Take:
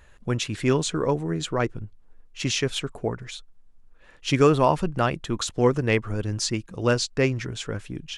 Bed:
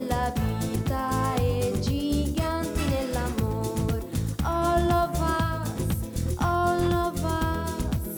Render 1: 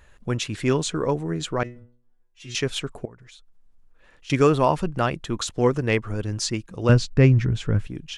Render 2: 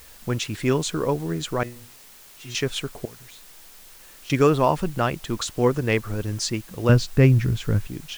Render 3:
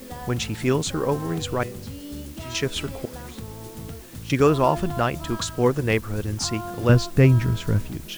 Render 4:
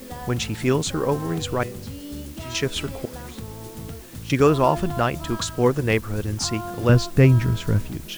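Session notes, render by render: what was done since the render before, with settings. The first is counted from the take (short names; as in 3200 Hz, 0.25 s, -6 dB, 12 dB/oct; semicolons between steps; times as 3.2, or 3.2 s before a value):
1.63–2.55 metallic resonator 120 Hz, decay 0.5 s, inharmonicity 0.002; 3.05–4.3 compressor 2.5:1, threshold -50 dBFS; 6.89–7.87 tone controls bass +13 dB, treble -7 dB
requantised 8-bit, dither triangular
add bed -10.5 dB
gain +1 dB; limiter -3 dBFS, peak gain reduction 1.5 dB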